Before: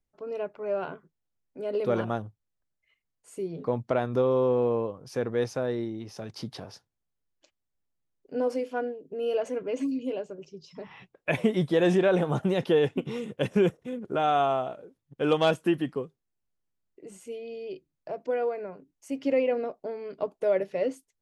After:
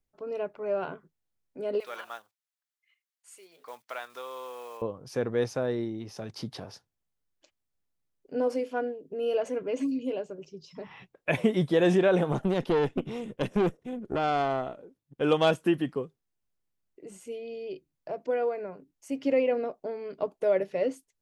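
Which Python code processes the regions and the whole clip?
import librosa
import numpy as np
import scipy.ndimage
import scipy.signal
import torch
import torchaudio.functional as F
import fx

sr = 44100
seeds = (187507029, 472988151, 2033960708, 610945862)

y = fx.chain(x, sr, fx.block_float(bits=7),
    fx.highpass(hz=1400.0, slope=12), at=(1.8, 4.82))
y = fx.chain(y, sr, fx.peak_eq(hz=280.0, db=4.5, octaves=1.3),
    fx.tube_stage(drive_db=20.0, bias=0.7), at=(12.32, 15.21))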